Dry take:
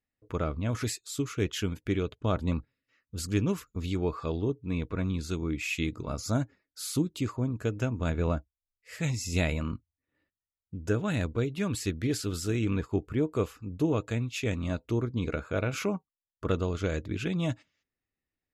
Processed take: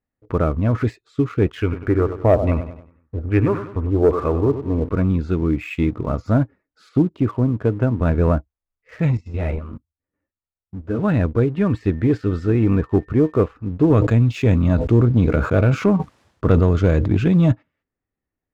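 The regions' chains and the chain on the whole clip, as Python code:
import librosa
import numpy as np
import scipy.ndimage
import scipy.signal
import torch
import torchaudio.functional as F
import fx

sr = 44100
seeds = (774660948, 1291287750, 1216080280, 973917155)

y = fx.chain(x, sr, fx.filter_lfo_lowpass(shape='saw_down', hz=1.2, low_hz=520.0, high_hz=2600.0, q=2.5),
    fx.peak_eq(hz=190.0, db=-12.5, octaves=0.39),
    fx.echo_feedback(ms=97, feedback_pct=47, wet_db=-11.5), at=(1.61, 4.89))
y = fx.chain(y, sr, fx.highpass(hz=79.0, slope=12),
    fx.high_shelf(hz=3900.0, db=-10.0), at=(6.89, 8.01))
y = fx.chain(y, sr, fx.lowpass(hz=4000.0, slope=6),
    fx.level_steps(step_db=10),
    fx.ensemble(), at=(9.17, 10.99))
y = fx.high_shelf(y, sr, hz=8200.0, db=-4.0, at=(11.55, 13.4), fade=0.02)
y = fx.dmg_tone(y, sr, hz=1800.0, level_db=-57.0, at=(11.55, 13.4), fade=0.02)
y = fx.chain(y, sr, fx.highpass(hz=63.0, slope=12),
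    fx.bass_treble(bass_db=5, treble_db=15),
    fx.sustainer(db_per_s=57.0), at=(13.9, 17.52))
y = scipy.signal.sosfilt(scipy.signal.butter(2, 1400.0, 'lowpass', fs=sr, output='sos'), y)
y = fx.leveller(y, sr, passes=1)
y = F.gain(torch.from_numpy(y), 8.5).numpy()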